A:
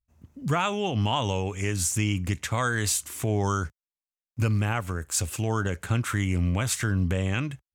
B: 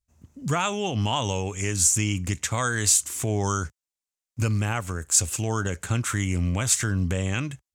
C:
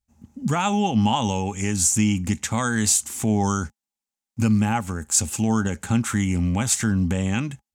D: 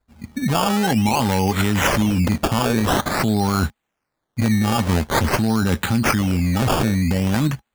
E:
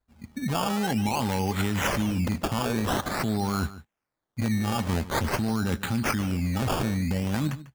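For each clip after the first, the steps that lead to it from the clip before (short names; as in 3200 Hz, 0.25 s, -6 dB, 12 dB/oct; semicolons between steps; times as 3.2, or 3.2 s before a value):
bell 7100 Hz +9 dB 0.99 oct
small resonant body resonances 220/820 Hz, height 14 dB, ringing for 75 ms
in parallel at +2 dB: negative-ratio compressor -27 dBFS, ratio -0.5; on the sum: decimation with a swept rate 15×, swing 100% 0.48 Hz
outdoor echo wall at 25 m, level -16 dB; gain -8 dB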